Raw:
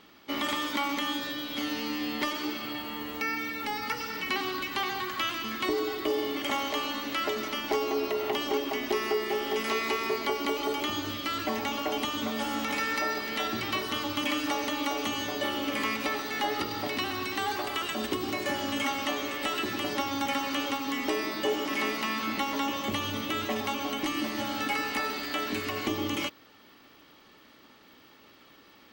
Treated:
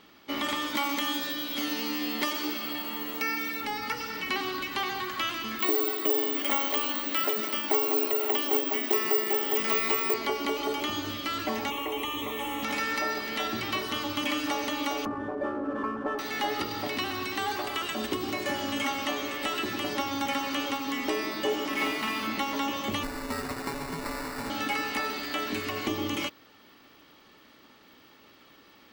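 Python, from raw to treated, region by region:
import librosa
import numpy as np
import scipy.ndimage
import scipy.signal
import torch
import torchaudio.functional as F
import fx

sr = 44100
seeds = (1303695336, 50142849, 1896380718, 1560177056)

y = fx.chain(x, sr, fx.highpass(hz=140.0, slope=24),
    fx.high_shelf(hz=6000.0, db=8.0), at=(0.75, 3.61))
y = fx.chain(y, sr, fx.highpass(hz=170.0, slope=24),
    fx.quant_float(bits=2),
    fx.resample_bad(factor=2, down='filtered', up='zero_stuff'), at=(5.59, 10.14))
y = fx.chain(y, sr, fx.quant_dither(seeds[0], bits=8, dither='none'),
    fx.fixed_phaser(hz=1000.0, stages=8),
    fx.env_flatten(amount_pct=50), at=(11.7, 12.63))
y = fx.chain(y, sr, fx.envelope_sharpen(power=1.5),
    fx.brickwall_lowpass(high_hz=1800.0),
    fx.running_max(window=3), at=(15.05, 16.19))
y = fx.chain(y, sr, fx.median_filter(points=5),
    fx.doubler(ms=48.0, db=-3.5), at=(21.72, 22.27))
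y = fx.chain(y, sr, fx.bessel_highpass(hz=1300.0, order=2),
    fx.high_shelf(hz=5800.0, db=7.0),
    fx.sample_hold(seeds[1], rate_hz=3200.0, jitter_pct=0), at=(23.03, 24.5))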